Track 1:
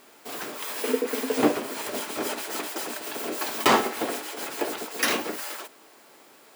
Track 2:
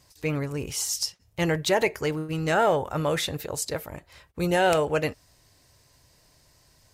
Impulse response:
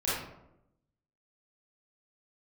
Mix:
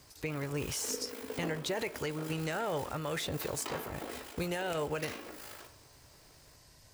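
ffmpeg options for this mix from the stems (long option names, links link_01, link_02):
-filter_complex "[0:a]tremolo=f=53:d=0.621,volume=-12dB,asplit=2[link_01][link_02];[link_02]volume=-15dB[link_03];[1:a]alimiter=limit=-16.5dB:level=0:latency=1,acrossover=split=480|1100[link_04][link_05][link_06];[link_04]acompressor=threshold=-33dB:ratio=4[link_07];[link_05]acompressor=threshold=-38dB:ratio=4[link_08];[link_06]acompressor=threshold=-33dB:ratio=4[link_09];[link_07][link_08][link_09]amix=inputs=3:normalize=0,volume=0.5dB[link_10];[2:a]atrim=start_sample=2205[link_11];[link_03][link_11]afir=irnorm=-1:irlink=0[link_12];[link_01][link_10][link_12]amix=inputs=3:normalize=0,alimiter=level_in=0.5dB:limit=-24dB:level=0:latency=1:release=451,volume=-0.5dB"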